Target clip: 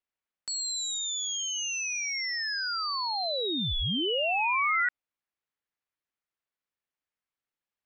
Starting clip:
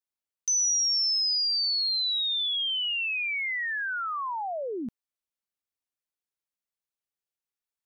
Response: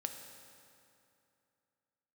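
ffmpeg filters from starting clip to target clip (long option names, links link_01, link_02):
-af "lowpass=frequency=1000:poles=1,aeval=exprs='val(0)*sin(2*PI*1700*n/s)':channel_layout=same,acontrast=79,volume=3.5dB"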